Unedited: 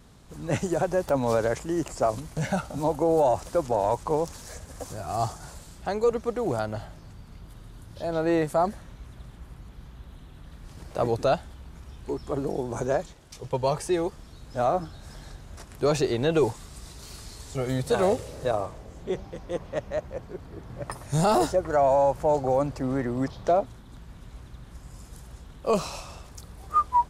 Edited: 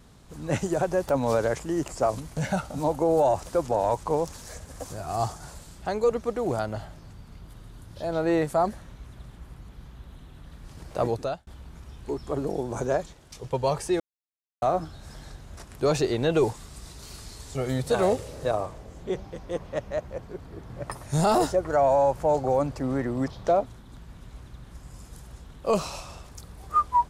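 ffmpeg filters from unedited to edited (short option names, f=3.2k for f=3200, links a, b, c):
-filter_complex "[0:a]asplit=4[a][b][c][d];[a]atrim=end=11.47,asetpts=PTS-STARTPTS,afade=t=out:st=11.05:d=0.42[e];[b]atrim=start=11.47:end=14,asetpts=PTS-STARTPTS,afade=t=in:d=0.004:c=hsin,afade=t=out:st=2.526:d=0.004:c=hsin[f];[c]atrim=start=14:end=14.62,asetpts=PTS-STARTPTS,volume=0[g];[d]atrim=start=14.62,asetpts=PTS-STARTPTS,afade=t=in:d=0.004:c=hsin[h];[e][f][g][h]concat=n=4:v=0:a=1"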